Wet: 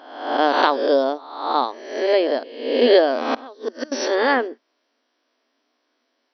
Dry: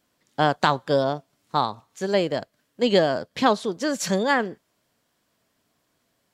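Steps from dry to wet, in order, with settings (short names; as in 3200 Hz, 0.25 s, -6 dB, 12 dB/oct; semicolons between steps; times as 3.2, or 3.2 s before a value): spectral swells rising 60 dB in 0.91 s; dynamic EQ 410 Hz, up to +5 dB, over -32 dBFS, Q 0.77; 3.34–3.92 flipped gate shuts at -11 dBFS, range -24 dB; FFT band-pass 230–6000 Hz; gain -1 dB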